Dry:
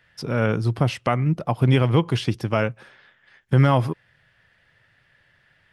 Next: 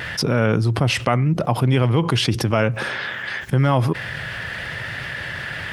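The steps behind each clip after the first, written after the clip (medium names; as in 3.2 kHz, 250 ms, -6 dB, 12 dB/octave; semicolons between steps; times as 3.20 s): vibrato 0.86 Hz 14 cents; high-pass 44 Hz; level flattener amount 70%; trim -2 dB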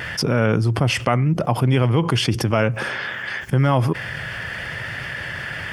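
band-stop 3.9 kHz, Q 5.9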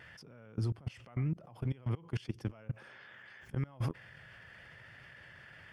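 treble shelf 5.7 kHz -5 dB; peak limiter -16 dBFS, peak gain reduction 11.5 dB; level held to a coarse grid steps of 23 dB; trim -8.5 dB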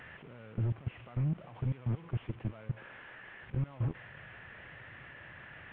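one-bit delta coder 16 kbps, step -54 dBFS; in parallel at -5 dB: saturation -34.5 dBFS, distortion -12 dB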